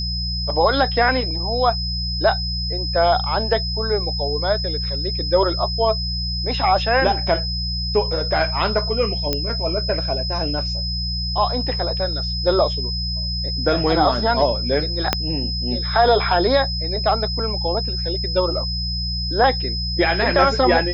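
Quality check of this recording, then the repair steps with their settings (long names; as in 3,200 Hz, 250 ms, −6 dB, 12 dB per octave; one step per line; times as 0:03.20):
mains hum 60 Hz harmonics 3 −26 dBFS
whistle 5,100 Hz −25 dBFS
0:09.33: click −6 dBFS
0:15.13: click −1 dBFS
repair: click removal
hum removal 60 Hz, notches 3
notch filter 5,100 Hz, Q 30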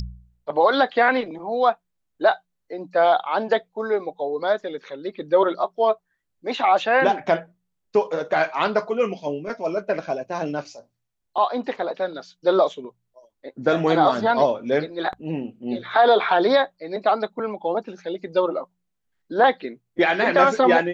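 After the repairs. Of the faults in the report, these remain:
0:15.13: click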